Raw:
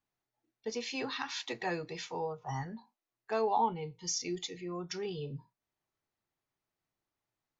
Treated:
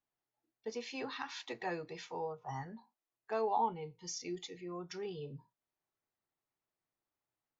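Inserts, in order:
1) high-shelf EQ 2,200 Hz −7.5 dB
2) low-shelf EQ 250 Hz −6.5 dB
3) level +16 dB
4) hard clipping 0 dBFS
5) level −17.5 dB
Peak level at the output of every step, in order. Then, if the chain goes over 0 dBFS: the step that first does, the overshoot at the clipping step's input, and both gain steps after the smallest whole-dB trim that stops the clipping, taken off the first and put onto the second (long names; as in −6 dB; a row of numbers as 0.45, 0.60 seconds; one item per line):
−20.0, −20.5, −4.5, −4.5, −22.0 dBFS
no step passes full scale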